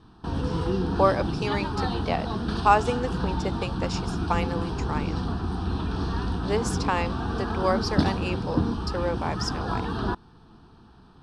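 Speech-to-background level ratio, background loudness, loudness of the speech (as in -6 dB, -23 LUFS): 0.0 dB, -29.0 LUFS, -29.0 LUFS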